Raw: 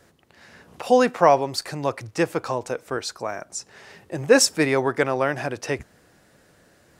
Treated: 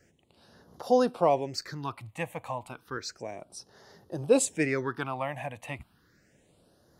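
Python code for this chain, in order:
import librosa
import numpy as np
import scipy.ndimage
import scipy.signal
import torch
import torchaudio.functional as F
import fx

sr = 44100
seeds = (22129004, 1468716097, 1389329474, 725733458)

y = fx.phaser_stages(x, sr, stages=6, low_hz=370.0, high_hz=2500.0, hz=0.32, feedback_pct=5)
y = F.gain(torch.from_numpy(y), -5.5).numpy()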